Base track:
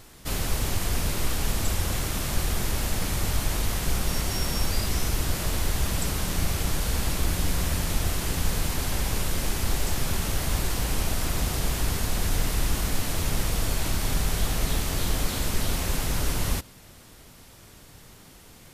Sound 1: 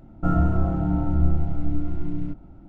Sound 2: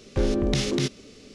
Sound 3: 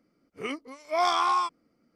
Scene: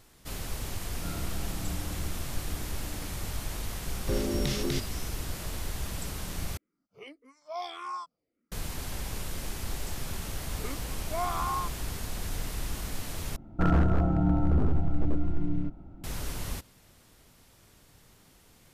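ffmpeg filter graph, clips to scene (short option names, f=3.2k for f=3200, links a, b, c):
-filter_complex "[1:a]asplit=2[a][b];[3:a]asplit=2[c][d];[0:a]volume=-9dB[e];[c]asplit=2[f][g];[g]afreqshift=-1.7[h];[f][h]amix=inputs=2:normalize=1[i];[d]lowpass=1.9k[j];[b]aeval=exprs='0.188*(abs(mod(val(0)/0.188+3,4)-2)-1)':c=same[k];[e]asplit=3[l][m][n];[l]atrim=end=6.574[o];[i]atrim=end=1.95,asetpts=PTS-STARTPTS,volume=-10.5dB[p];[m]atrim=start=8.516:end=13.364[q];[k]atrim=end=2.68,asetpts=PTS-STARTPTS,volume=-1.5dB[r];[n]atrim=start=16.036[s];[a]atrim=end=2.68,asetpts=PTS-STARTPTS,volume=-17dB,afade=t=in:d=0.004:c=hsin,afade=t=out:st=2.676:d=0.004:c=hsin,adelay=790[t];[2:a]atrim=end=1.34,asetpts=PTS-STARTPTS,volume=-6.5dB,afade=t=in:d=0.004:c=hsin,afade=t=out:st=1.336:d=0.004:c=hsin,adelay=3920[u];[j]atrim=end=1.95,asetpts=PTS-STARTPTS,volume=-7dB,afade=t=in:d=0.004:c=hsin,afade=t=out:st=1.946:d=0.004:c=hsin,adelay=10200[v];[o][p]acrossfade=d=0.004:c1=hsin:c2=hsin[w];[w][q]acrossfade=d=0.004:c1=hsin:c2=hsin[x];[x][r]acrossfade=d=0.004:c1=hsin:c2=hsin[y];[y][s]acrossfade=d=0.004:c1=hsin:c2=hsin[z];[z][t][u][v]amix=inputs=4:normalize=0"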